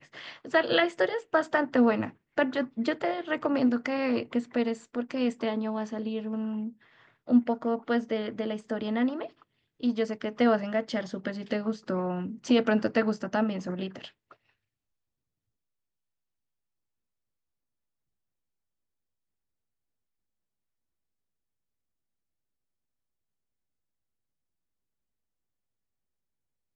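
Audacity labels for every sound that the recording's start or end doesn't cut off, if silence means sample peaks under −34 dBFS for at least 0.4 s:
7.290000	9.260000	sound
9.830000	14.050000	sound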